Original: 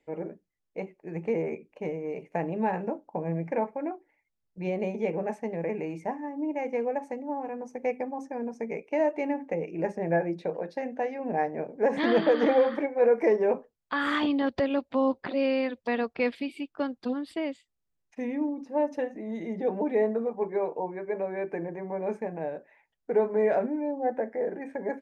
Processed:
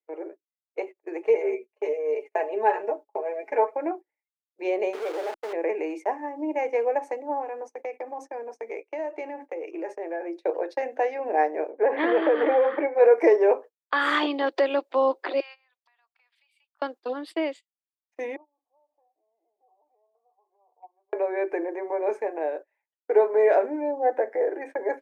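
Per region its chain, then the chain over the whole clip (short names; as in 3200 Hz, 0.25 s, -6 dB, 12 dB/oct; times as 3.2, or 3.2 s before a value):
1.22–3.75 comb 4.7 ms, depth 100% + flange 1.2 Hz, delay 6.2 ms, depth 1.9 ms, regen +38%
4.93–5.53 level-crossing sampler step -36 dBFS + compressor 2:1, threshold -40 dBFS + overdrive pedal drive 19 dB, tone 1800 Hz, clips at -27 dBFS
7.42–10.45 low shelf 110 Hz -8 dB + compressor 5:1, threshold -34 dBFS
11.7–12.95 LPF 2800 Hz 24 dB/oct + low shelf 290 Hz +3 dB + compressor 3:1, threshold -22 dBFS
15.4–16.82 steep high-pass 830 Hz + compressor 12:1, threshold -46 dBFS
18.36–21.13 compressor, threshold -31 dBFS + vocal tract filter a
whole clip: gate -41 dBFS, range -23 dB; elliptic high-pass 330 Hz, stop band 50 dB; AGC gain up to 6 dB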